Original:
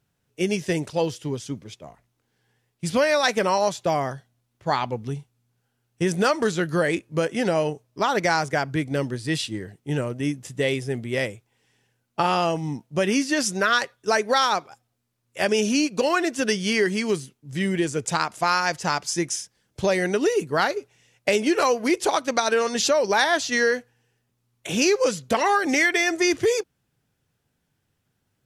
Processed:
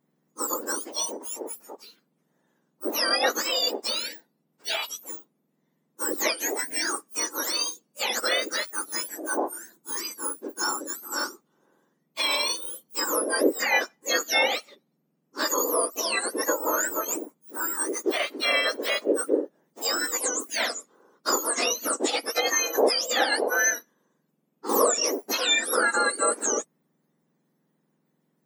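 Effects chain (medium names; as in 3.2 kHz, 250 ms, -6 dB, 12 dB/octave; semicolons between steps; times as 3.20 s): spectrum inverted on a logarithmic axis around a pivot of 1.7 kHz; 24.69–25.11 s: swell ahead of each attack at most 52 dB/s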